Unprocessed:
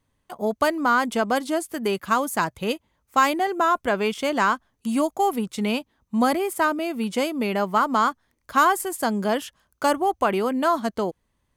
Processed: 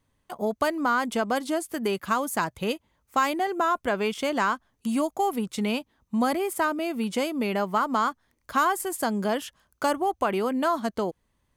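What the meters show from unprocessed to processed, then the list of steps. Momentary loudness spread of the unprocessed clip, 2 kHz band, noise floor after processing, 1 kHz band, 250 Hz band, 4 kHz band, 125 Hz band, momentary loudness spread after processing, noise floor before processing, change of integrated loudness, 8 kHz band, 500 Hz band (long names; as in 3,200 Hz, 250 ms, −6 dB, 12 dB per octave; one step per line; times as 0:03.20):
8 LU, −4.0 dB, −73 dBFS, −4.0 dB, −2.5 dB, −3.0 dB, −2.5 dB, 6 LU, −73 dBFS, −3.5 dB, −2.5 dB, −3.0 dB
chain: downward compressor 1.5 to 1, threshold −27 dBFS, peak gain reduction 5.5 dB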